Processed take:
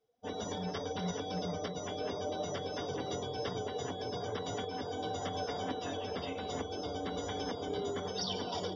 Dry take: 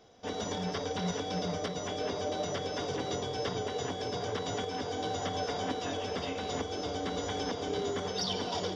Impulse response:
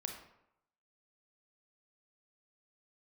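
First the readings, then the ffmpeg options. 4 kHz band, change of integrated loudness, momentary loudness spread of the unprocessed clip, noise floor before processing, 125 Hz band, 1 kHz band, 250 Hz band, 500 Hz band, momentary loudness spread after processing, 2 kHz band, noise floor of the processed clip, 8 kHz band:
-4.0 dB, -3.5 dB, 2 LU, -38 dBFS, -3.0 dB, -3.0 dB, -3.0 dB, -3.0 dB, 2 LU, -5.0 dB, -42 dBFS, -4.5 dB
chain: -af "afftdn=nr=23:nf=-45,volume=-3dB"

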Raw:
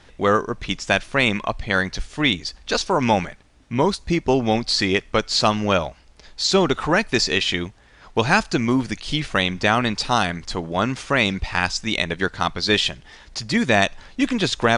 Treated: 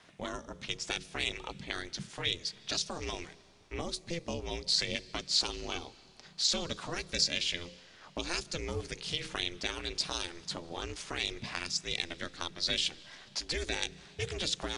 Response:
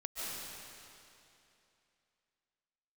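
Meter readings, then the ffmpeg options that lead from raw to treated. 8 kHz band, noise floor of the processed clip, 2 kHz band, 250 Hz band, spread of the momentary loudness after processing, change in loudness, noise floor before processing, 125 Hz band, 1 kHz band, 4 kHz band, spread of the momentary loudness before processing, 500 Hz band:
-6.5 dB, -58 dBFS, -17.0 dB, -21.0 dB, 12 LU, -13.5 dB, -51 dBFS, -17.5 dB, -21.0 dB, -8.5 dB, 8 LU, -18.5 dB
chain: -filter_complex "[0:a]bass=f=250:g=-10,treble=f=4k:g=1,bandreject=f=50:t=h:w=6,bandreject=f=100:t=h:w=6,bandreject=f=150:t=h:w=6,bandreject=f=200:t=h:w=6,bandreject=f=250:t=h:w=6,bandreject=f=300:t=h:w=6,bandreject=f=350:t=h:w=6,acrossover=split=240|3000[a][b][c];[b]acompressor=threshold=-33dB:ratio=10[d];[a][d][c]amix=inputs=3:normalize=0,aeval=exprs='val(0)*sin(2*PI*170*n/s)':c=same,asplit=2[e][f];[1:a]atrim=start_sample=2205[g];[f][g]afir=irnorm=-1:irlink=0,volume=-22.5dB[h];[e][h]amix=inputs=2:normalize=0,volume=-4.5dB"

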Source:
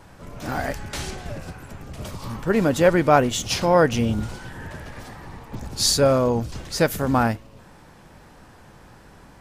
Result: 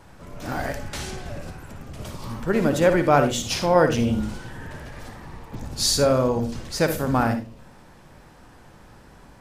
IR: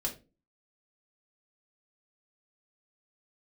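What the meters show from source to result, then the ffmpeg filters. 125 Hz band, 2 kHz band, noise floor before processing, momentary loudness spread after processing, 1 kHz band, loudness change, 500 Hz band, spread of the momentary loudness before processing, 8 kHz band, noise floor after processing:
-1.0 dB, -1.5 dB, -49 dBFS, 21 LU, -1.5 dB, -1.0 dB, -1.0 dB, 20 LU, -1.5 dB, -49 dBFS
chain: -filter_complex "[0:a]asplit=2[a][b];[1:a]atrim=start_sample=2205,adelay=56[c];[b][c]afir=irnorm=-1:irlink=0,volume=-10.5dB[d];[a][d]amix=inputs=2:normalize=0,volume=-2dB"

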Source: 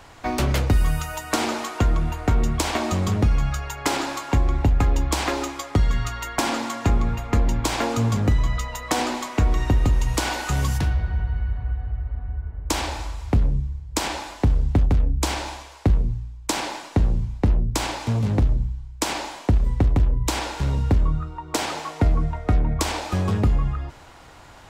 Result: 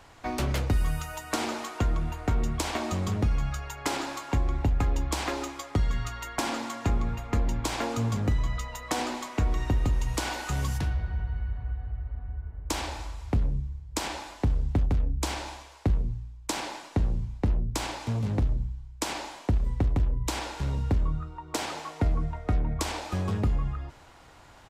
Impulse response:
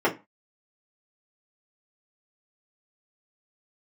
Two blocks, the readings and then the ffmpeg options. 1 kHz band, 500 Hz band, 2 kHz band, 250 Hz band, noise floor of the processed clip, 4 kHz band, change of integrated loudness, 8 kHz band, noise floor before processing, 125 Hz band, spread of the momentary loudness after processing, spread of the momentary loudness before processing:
-6.5 dB, -6.5 dB, -6.5 dB, -6.5 dB, -50 dBFS, -6.5 dB, -6.5 dB, -6.5 dB, -44 dBFS, -6.5 dB, 7 LU, 7 LU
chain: -af "aresample=32000,aresample=44100,volume=-6.5dB"

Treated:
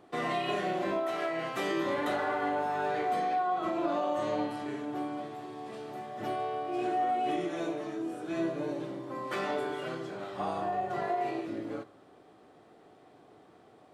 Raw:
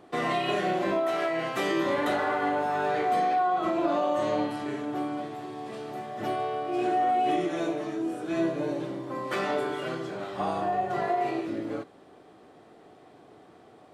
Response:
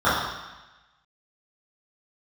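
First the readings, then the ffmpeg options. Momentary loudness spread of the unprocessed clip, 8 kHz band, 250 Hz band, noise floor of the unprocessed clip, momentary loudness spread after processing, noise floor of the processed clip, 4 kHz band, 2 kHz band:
10 LU, -4.5 dB, -4.5 dB, -54 dBFS, 9 LU, -58 dBFS, -4.5 dB, -4.5 dB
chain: -filter_complex "[0:a]asplit=2[a][b];[1:a]atrim=start_sample=2205[c];[b][c]afir=irnorm=-1:irlink=0,volume=-37.5dB[d];[a][d]amix=inputs=2:normalize=0,volume=-4.5dB"

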